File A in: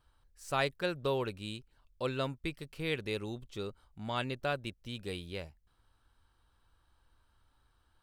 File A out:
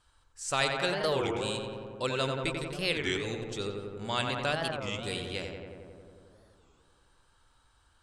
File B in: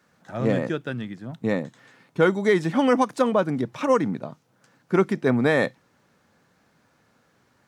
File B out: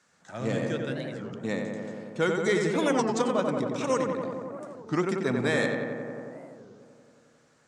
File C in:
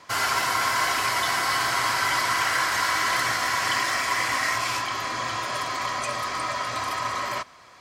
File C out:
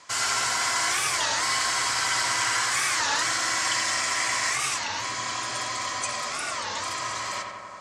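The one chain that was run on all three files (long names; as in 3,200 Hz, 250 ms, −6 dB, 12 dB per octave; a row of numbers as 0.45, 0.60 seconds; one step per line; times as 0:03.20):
tilt shelving filter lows −3.5 dB, about 700 Hz
on a send: feedback echo with a low-pass in the loop 90 ms, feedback 81%, low-pass 2,500 Hz, level −4 dB
on the sum: dynamic equaliser 1,100 Hz, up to −4 dB, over −33 dBFS, Q 0.71
low-pass with resonance 7,800 Hz, resonance Q 2.6
wow of a warped record 33 1/3 rpm, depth 250 cents
normalise the peak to −12 dBFS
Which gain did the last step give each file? +3.0, −5.0, −4.5 decibels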